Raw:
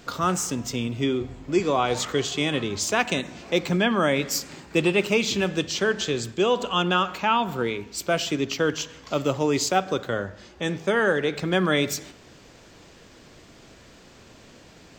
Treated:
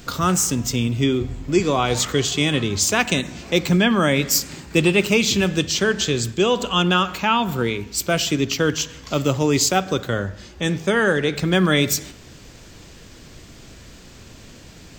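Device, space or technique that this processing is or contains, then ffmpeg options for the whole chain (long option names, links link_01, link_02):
smiley-face EQ: -af "lowshelf=frequency=120:gain=9,equalizer=frequency=700:width_type=o:width=2.1:gain=-4,highshelf=frequency=7700:gain=7.5,volume=5dB"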